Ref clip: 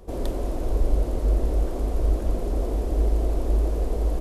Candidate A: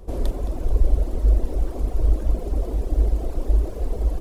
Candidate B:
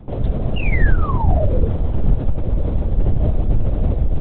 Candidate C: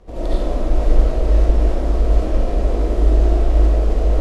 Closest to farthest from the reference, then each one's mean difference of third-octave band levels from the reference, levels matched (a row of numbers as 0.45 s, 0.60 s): A, C, B; 2.0 dB, 4.0 dB, 12.0 dB